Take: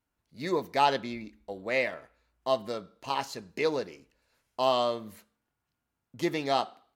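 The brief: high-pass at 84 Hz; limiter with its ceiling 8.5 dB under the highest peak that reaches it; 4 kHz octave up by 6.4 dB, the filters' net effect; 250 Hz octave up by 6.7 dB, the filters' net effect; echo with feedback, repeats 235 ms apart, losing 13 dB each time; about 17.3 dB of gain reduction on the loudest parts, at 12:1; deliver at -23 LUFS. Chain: high-pass 84 Hz; peaking EQ 250 Hz +9 dB; peaking EQ 4 kHz +8 dB; compression 12:1, threshold -36 dBFS; peak limiter -29.5 dBFS; feedback delay 235 ms, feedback 22%, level -13 dB; trim +20.5 dB

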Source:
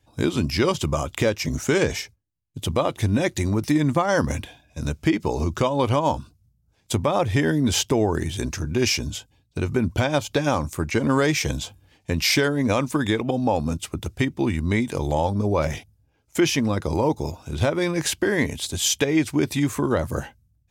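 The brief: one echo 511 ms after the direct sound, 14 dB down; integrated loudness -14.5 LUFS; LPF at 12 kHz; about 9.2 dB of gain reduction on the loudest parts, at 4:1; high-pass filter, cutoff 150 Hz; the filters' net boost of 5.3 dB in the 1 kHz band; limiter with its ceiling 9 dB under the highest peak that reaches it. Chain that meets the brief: high-pass 150 Hz; low-pass 12 kHz; peaking EQ 1 kHz +6.5 dB; compression 4:1, threshold -25 dBFS; peak limiter -19 dBFS; delay 511 ms -14 dB; trim +16.5 dB

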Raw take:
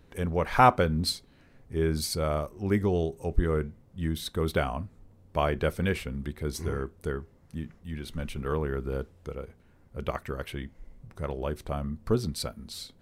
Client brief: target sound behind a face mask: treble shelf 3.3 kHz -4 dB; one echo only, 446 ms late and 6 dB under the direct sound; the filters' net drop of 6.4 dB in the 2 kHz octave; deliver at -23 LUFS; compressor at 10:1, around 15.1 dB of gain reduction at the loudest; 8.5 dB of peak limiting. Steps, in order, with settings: peaking EQ 2 kHz -8 dB; compression 10:1, threshold -34 dBFS; peak limiter -31.5 dBFS; treble shelf 3.3 kHz -4 dB; delay 446 ms -6 dB; trim +19 dB

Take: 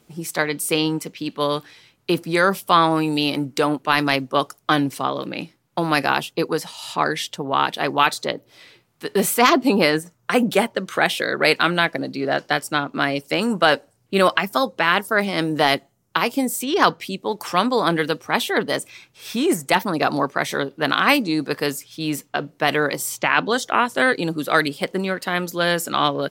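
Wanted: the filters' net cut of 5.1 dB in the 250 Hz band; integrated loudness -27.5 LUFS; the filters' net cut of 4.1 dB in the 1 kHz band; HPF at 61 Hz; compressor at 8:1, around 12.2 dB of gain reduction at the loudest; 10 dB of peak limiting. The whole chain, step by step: high-pass 61 Hz; peaking EQ 250 Hz -6.5 dB; peaking EQ 1 kHz -5 dB; compression 8:1, threshold -26 dBFS; trim +4.5 dB; peak limiter -12.5 dBFS

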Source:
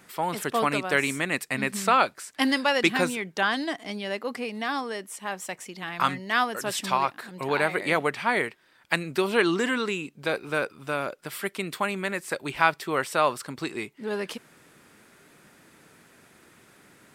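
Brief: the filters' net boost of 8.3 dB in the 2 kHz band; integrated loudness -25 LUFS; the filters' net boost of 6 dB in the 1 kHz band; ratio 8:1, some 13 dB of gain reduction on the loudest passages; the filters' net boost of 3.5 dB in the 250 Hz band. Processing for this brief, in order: peaking EQ 250 Hz +4 dB; peaking EQ 1 kHz +4.5 dB; peaking EQ 2 kHz +9 dB; compression 8:1, threshold -23 dBFS; trim +3.5 dB

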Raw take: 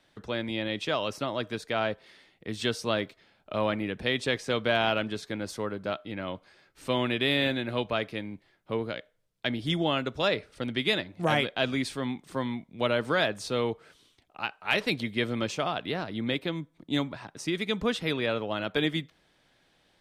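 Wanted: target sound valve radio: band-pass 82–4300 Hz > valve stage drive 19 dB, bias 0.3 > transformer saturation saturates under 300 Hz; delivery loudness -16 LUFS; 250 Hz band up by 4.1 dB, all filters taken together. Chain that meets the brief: band-pass 82–4300 Hz; peaking EQ 250 Hz +5 dB; valve stage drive 19 dB, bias 0.3; transformer saturation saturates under 300 Hz; trim +16 dB

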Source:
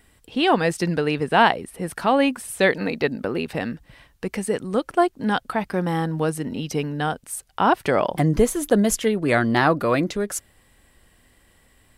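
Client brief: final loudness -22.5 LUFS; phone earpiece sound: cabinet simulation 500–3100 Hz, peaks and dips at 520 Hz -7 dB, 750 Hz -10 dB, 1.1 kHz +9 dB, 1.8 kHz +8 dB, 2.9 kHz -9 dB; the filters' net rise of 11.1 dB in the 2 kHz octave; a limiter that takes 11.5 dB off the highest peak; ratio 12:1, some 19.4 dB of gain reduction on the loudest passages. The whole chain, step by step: peaking EQ 2 kHz +7.5 dB; compression 12:1, threshold -29 dBFS; peak limiter -23.5 dBFS; cabinet simulation 500–3100 Hz, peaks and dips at 520 Hz -7 dB, 750 Hz -10 dB, 1.1 kHz +9 dB, 1.8 kHz +8 dB, 2.9 kHz -9 dB; trim +13.5 dB

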